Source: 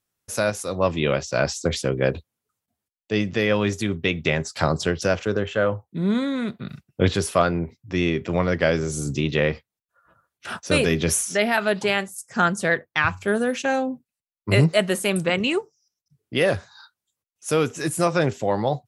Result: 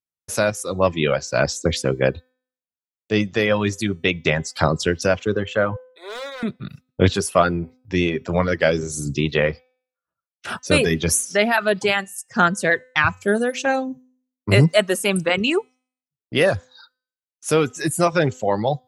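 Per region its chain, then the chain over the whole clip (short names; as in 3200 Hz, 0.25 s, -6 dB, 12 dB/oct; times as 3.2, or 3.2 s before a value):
5.76–6.43 steep high-pass 480 Hz + hard clip -30.5 dBFS
whole clip: gate with hold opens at -42 dBFS; de-hum 254.5 Hz, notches 36; reverb removal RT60 1.1 s; gain +3.5 dB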